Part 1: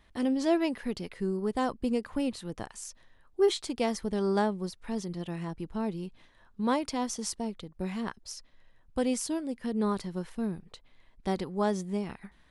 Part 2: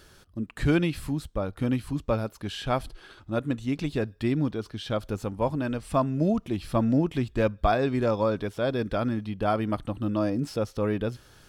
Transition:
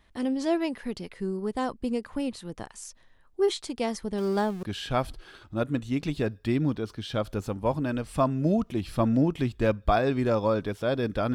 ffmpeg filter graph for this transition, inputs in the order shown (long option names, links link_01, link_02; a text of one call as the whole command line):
ffmpeg -i cue0.wav -i cue1.wav -filter_complex "[0:a]asettb=1/sr,asplit=3[link_01][link_02][link_03];[link_01]atrim=end=4.184[link_04];[link_02]atrim=start=4.18:end=4.63,asetpts=PTS-STARTPTS,afade=type=in:duration=0.004:curve=qsin,afade=type=out:start_time=0.446:duration=0.004:curve=qsin,aeval=exprs='val(0)+0.5*0.0106*sgn(val(0))':channel_layout=same[link_05];[link_03]atrim=start=4.626[link_06];[link_04][link_05]acrossfade=duration=0.004:curve1=hsin:curve2=qsin[link_07];[link_07][link_06]acrossfade=duration=0.004:curve1=qsin:curve2=hsin,apad=whole_dur=11.34,atrim=end=11.34,atrim=end=4.632[link_08];[1:a]atrim=start=2.388:end=9.1[link_09];[link_08][link_09]acrossfade=duration=0.004:curve1=hsin:curve2=hsin" out.wav